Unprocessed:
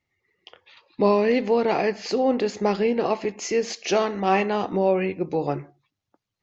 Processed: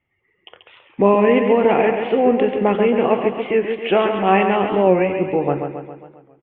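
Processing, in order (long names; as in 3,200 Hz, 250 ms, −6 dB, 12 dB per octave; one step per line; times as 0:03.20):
Butterworth low-pass 3,300 Hz 96 dB per octave
on a send: repeating echo 136 ms, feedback 55%, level −6.5 dB
on the sum: wow of a warped record 45 rpm, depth 100 cents
level +5 dB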